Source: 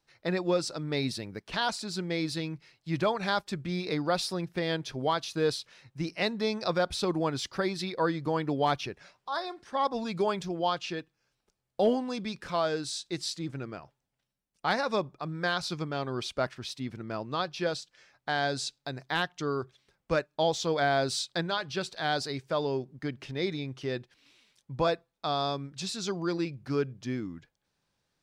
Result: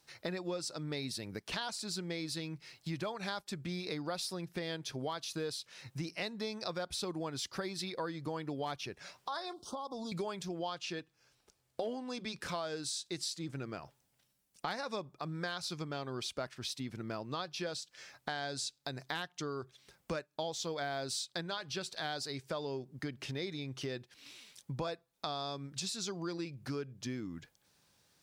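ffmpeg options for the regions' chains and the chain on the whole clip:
-filter_complex "[0:a]asettb=1/sr,asplit=3[s0][s1][s2];[s0]atrim=end=9.534[s3];[s1]atrim=start=9.53:end=10.12,asetpts=PTS-STARTPTS,afade=t=in:d=0.004:c=qsin,afade=t=out:st=0.586:d=0.004:c=qsin,acompressor=threshold=0.0141:ratio=6:attack=3.2:release=140:knee=1:detection=peak,asuperstop=centerf=2000:order=8:qfactor=1[s4];[s2]atrim=start=10.116[s5];[s3][s4]acrossfade=d=0.004:c1=hsin:c2=qsin[s6];[s6][s5]acrossfade=d=0.004:c1=qsin:c2=hsin,asettb=1/sr,asplit=3[s7][s8][s9];[s7]atrim=end=10.994[s10];[s8]atrim=start=10.99:end=12.41,asetpts=PTS-STARTPTS,afade=t=in:d=0.004:c=qsin,afade=t=out:st=1.416:d=0.004:c=qsin,highshelf=f=9500:g=-8,bandreject=f=200:w=5.2[s11];[s9]atrim=start=12.406[s12];[s10][s11]acrossfade=d=0.004:c1=hsin:c2=qsin[s13];[s13][s12]acrossfade=d=0.004:c1=qsin:c2=hsin,highpass=48,aemphasis=mode=production:type=cd,acompressor=threshold=0.00562:ratio=4,volume=2"

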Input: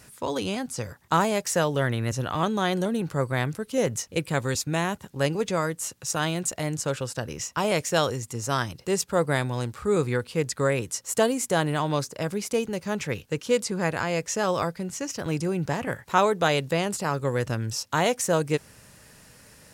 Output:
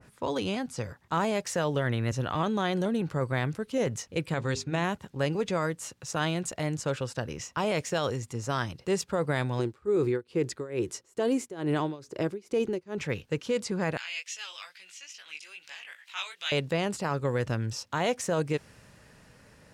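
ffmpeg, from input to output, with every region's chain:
-filter_complex "[0:a]asettb=1/sr,asplit=3[s0][s1][s2];[s0]atrim=end=4.344[s3];[s1]atrim=start=4.34:end=4.84,asetpts=PTS-STARTPTS,afade=t=in:d=0.004:c=qsin,afade=t=out:st=0.496:d=0.004:c=qsin,lowpass=7200,bandreject=f=50:t=h:w=6,bandreject=f=100:t=h:w=6,bandreject=f=150:t=h:w=6,bandreject=f=200:t=h:w=6,bandreject=f=250:t=h:w=6,bandreject=f=300:t=h:w=6,bandreject=f=350:t=h:w=6,bandreject=f=400:t=h:w=6[s4];[s2]atrim=start=4.836[s5];[s3][s4]acrossfade=d=0.004:c1=hsin:c2=qsin[s6];[s6][s5]acrossfade=d=0.004:c1=qsin:c2=hsin,asettb=1/sr,asplit=3[s7][s8][s9];[s7]atrim=end=9.594[s10];[s8]atrim=start=9.59:end=12.98,asetpts=PTS-STARTPTS,afade=t=in:d=0.004:c=qsin,afade=t=out:st=3.386:d=0.004:c=qsin,equalizer=f=360:w=2.9:g=14.5,tremolo=f=2.3:d=0.93[s11];[s9]atrim=start=12.976[s12];[s10][s11]acrossfade=d=0.004:c1=hsin:c2=qsin[s13];[s13][s12]acrossfade=d=0.004:c1=qsin:c2=hsin,asettb=1/sr,asplit=3[s14][s15][s16];[s14]atrim=end=13.974[s17];[s15]atrim=start=13.97:end=16.52,asetpts=PTS-STARTPTS,afade=t=in:d=0.004:c=qsin,afade=t=out:st=2.546:d=0.004:c=qsin,highpass=f=2800:t=q:w=2.4,acompressor=mode=upward:threshold=0.02:ratio=2.5:attack=3.2:release=140:knee=2.83:detection=peak,flanger=delay=16:depth=4.9:speed=2.4[s18];[s16]atrim=start=16.516[s19];[s17][s18]acrossfade=d=0.004:c1=hsin:c2=qsin[s20];[s20][s19]acrossfade=d=0.004:c1=qsin:c2=hsin,aemphasis=mode=reproduction:type=75kf,alimiter=limit=0.133:level=0:latency=1:release=22,adynamicequalizer=threshold=0.00794:dfrequency=2000:dqfactor=0.7:tfrequency=2000:tqfactor=0.7:attack=5:release=100:ratio=0.375:range=2.5:mode=boostabove:tftype=highshelf,volume=0.841"

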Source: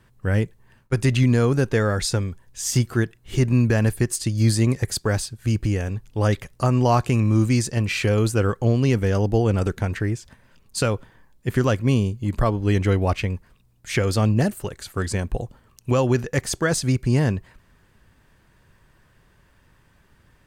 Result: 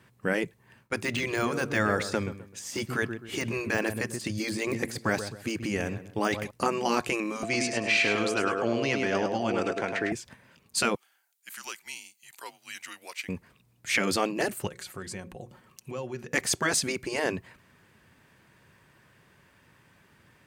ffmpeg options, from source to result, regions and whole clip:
-filter_complex "[0:a]asettb=1/sr,asplit=3[s0][s1][s2];[s0]atrim=end=0.974[s3];[s1]atrim=start=0.97:end=6.51,asetpts=PTS-STARTPTS,afade=t=in:d=0.004:c=qsin,afade=t=out:st=5.536:d=0.004:c=qsin,deesser=0.75,lowshelf=f=110:g=-10,asplit=2[s4][s5];[s5]adelay=129,lowpass=f=2300:p=1,volume=0.237,asplit=2[s6][s7];[s7]adelay=129,lowpass=f=2300:p=1,volume=0.34,asplit=2[s8][s9];[s9]adelay=129,lowpass=f=2300:p=1,volume=0.34[s10];[s4][s6][s8][s10]amix=inputs=4:normalize=0,atrim=end_sample=244314[s11];[s2]atrim=start=6.506[s12];[s3][s11]acrossfade=d=0.004:c1=hsin:c2=qsin[s13];[s13][s12]acrossfade=d=0.004:c1=qsin:c2=hsin,asettb=1/sr,asplit=3[s14][s15][s16];[s14]atrim=end=7.434[s17];[s15]atrim=start=7.43:end=10.12,asetpts=PTS-STARTPTS,afade=t=in:d=0.004:c=qsin,afade=t=out:st=2.686:d=0.004:c=qsin,aeval=exprs='val(0)+0.0708*sin(2*PI*680*n/s)':c=same,highpass=340,lowpass=6000,aecho=1:1:104|208|312|416:0.501|0.14|0.0393|0.011,atrim=end_sample=118629[s18];[s16]atrim=start=10.116[s19];[s17][s18]acrossfade=d=0.004:c1=hsin:c2=qsin[s20];[s20][s19]acrossfade=d=0.004:c1=qsin:c2=hsin,asettb=1/sr,asplit=3[s21][s22][s23];[s21]atrim=end=10.954[s24];[s22]atrim=start=10.95:end=13.29,asetpts=PTS-STARTPTS,afade=t=in:d=0.004:c=qsin,afade=t=out:st=2.336:d=0.004:c=qsin,highpass=650,aderivative,afreqshift=-170[s25];[s23]atrim=start=13.286[s26];[s24][s25]acrossfade=d=0.004:c1=hsin:c2=qsin[s27];[s27][s26]acrossfade=d=0.004:c1=qsin:c2=hsin,asettb=1/sr,asplit=3[s28][s29][s30];[s28]atrim=end=14.674[s31];[s29]atrim=start=14.67:end=16.32,asetpts=PTS-STARTPTS,afade=t=in:d=0.004:c=qsin,afade=t=out:st=1.646:d=0.004:c=qsin,aecho=1:1:5.5:0.4,atrim=end_sample=72765,acompressor=threshold=0.0112:ratio=2.5:attack=3.2:release=140:knee=1:detection=peak,bandreject=f=60:t=h:w=6,bandreject=f=120:t=h:w=6,bandreject=f=180:t=h:w=6,bandreject=f=240:t=h:w=6,bandreject=f=300:t=h:w=6,bandreject=f=360:t=h:w=6,bandreject=f=420:t=h:w=6,bandreject=f=480:t=h:w=6,bandreject=f=540:t=h:w=6[s32];[s30]atrim=start=16.316[s33];[s31][s32]acrossfade=d=0.004:c1=hsin:c2=qsin[s34];[s34][s33]acrossfade=d=0.004:c1=qsin:c2=hsin,afftfilt=real='re*lt(hypot(re,im),0.447)':imag='im*lt(hypot(re,im),0.447)':win_size=1024:overlap=0.75,highpass=120,equalizer=f=2300:t=o:w=0.53:g=4"

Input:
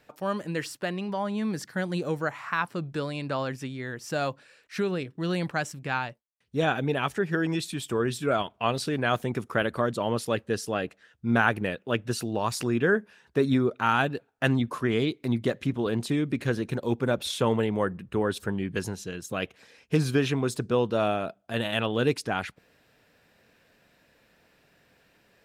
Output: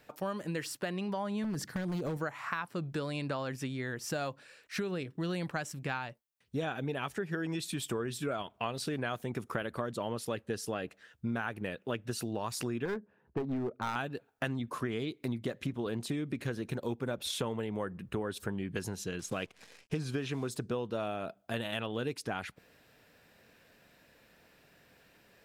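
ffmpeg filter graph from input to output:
-filter_complex "[0:a]asettb=1/sr,asplit=3[s0][s1][s2];[s0]atrim=end=1.444[s3];[s1]atrim=start=1.44:end=2.17,asetpts=PTS-STARTPTS,afade=t=in:d=0.004:c=qsin,afade=t=out:st=0.726:d=0.004:c=qsin,lowshelf=f=410:g=8,acompressor=threshold=0.0562:ratio=10:attack=3.2:release=140:knee=1:detection=peak,aeval=exprs='0.0562*(abs(mod(val(0)/0.0562+3,4)-2)-1)':c=same[s4];[s2]atrim=start=2.166[s5];[s3][s4]acrossfade=d=0.004:c1=hsin:c2=qsin[s6];[s6][s5]acrossfade=d=0.004:c1=qsin:c2=hsin,asettb=1/sr,asplit=3[s7][s8][s9];[s7]atrim=end=12.854[s10];[s8]atrim=start=12.85:end=13.96,asetpts=PTS-STARTPTS,afade=t=in:d=0.004:c=qsin,afade=t=out:st=1.106:d=0.004:c=qsin,adynamicsmooth=sensitivity=0.5:basefreq=800,aeval=exprs='clip(val(0),-1,0.0708)':c=same[s11];[s9]atrim=start=13.956[s12];[s10][s11]acrossfade=d=0.004:c1=hsin:c2=qsin[s13];[s13][s12]acrossfade=d=0.004:c1=qsin:c2=hsin,asettb=1/sr,asplit=3[s14][s15][s16];[s14]atrim=end=19.194[s17];[s15]atrim=start=19.19:end=20.51,asetpts=PTS-STARTPTS,afade=t=in:d=0.004:c=qsin,afade=t=out:st=1.316:d=0.004:c=qsin,acrusher=bits=9:dc=4:mix=0:aa=0.000001,lowpass=8400[s18];[s16]atrim=start=20.506[s19];[s17][s18]acrossfade=d=0.004:c1=hsin:c2=qsin[s20];[s20][s19]acrossfade=d=0.004:c1=qsin:c2=hsin,highshelf=f=12000:g=6,acompressor=threshold=0.0251:ratio=6"

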